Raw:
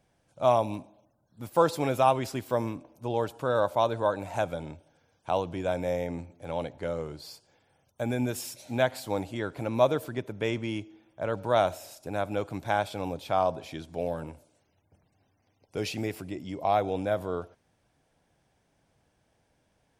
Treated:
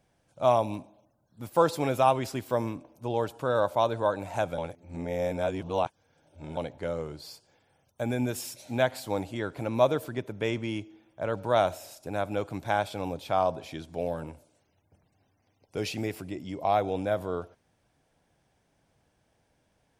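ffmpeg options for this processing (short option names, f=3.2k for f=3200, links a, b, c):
-filter_complex "[0:a]asplit=3[a][b][c];[a]atrim=end=4.582[d];[b]atrim=start=4.578:end=6.572,asetpts=PTS-STARTPTS,areverse[e];[c]atrim=start=6.568[f];[d][e]acrossfade=d=0.004:c1=hsin:c2=hsin[g];[g][f]acrossfade=d=0.004:c1=hsin:c2=hsin"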